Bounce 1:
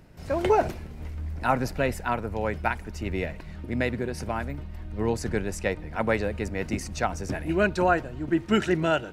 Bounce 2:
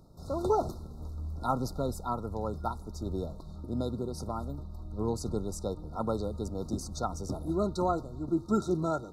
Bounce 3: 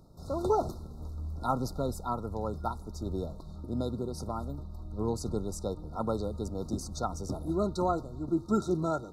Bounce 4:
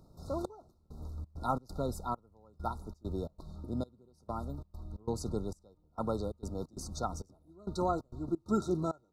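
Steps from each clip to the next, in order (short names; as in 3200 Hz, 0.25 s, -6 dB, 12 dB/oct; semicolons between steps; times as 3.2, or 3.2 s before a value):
FFT band-reject 1400–3600 Hz; dynamic EQ 620 Hz, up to -4 dB, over -35 dBFS, Q 1.6; gain -4 dB
nothing audible
step gate "xxxx....xxx.xx." 133 bpm -24 dB; gain -2.5 dB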